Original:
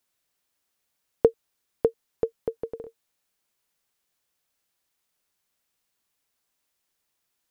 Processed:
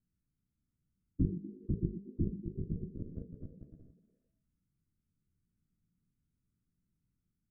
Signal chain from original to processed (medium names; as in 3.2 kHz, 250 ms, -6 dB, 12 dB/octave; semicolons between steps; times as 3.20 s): spectrogram pixelated in time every 50 ms; bass shelf 290 Hz +10.5 dB; hum notches 50/100/150/200/250/300/350/400/450 Hz; ever faster or slower copies 625 ms, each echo +2 st, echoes 3; static phaser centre 1.9 kHz, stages 4; low-pass that closes with the level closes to 320 Hz, closed at -33.5 dBFS; FFT filter 130 Hz 0 dB, 250 Hz +4 dB, 590 Hz -18 dB, 2 kHz -27 dB; repeats whose band climbs or falls 120 ms, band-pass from 230 Hz, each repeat 0.7 oct, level -7 dB; formant shift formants -4 st; trim +6 dB